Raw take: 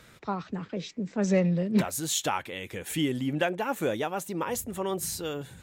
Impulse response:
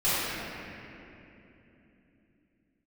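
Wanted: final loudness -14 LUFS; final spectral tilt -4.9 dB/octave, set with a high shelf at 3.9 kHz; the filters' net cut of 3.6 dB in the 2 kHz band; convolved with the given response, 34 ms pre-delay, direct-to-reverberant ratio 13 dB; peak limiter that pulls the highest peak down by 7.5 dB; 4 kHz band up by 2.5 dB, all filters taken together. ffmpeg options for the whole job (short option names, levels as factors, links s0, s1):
-filter_complex "[0:a]equalizer=f=2000:t=o:g=-6,highshelf=f=3900:g=-5.5,equalizer=f=4000:t=o:g=8.5,alimiter=limit=0.0891:level=0:latency=1,asplit=2[s0][s1];[1:a]atrim=start_sample=2205,adelay=34[s2];[s1][s2]afir=irnorm=-1:irlink=0,volume=0.0398[s3];[s0][s3]amix=inputs=2:normalize=0,volume=7.5"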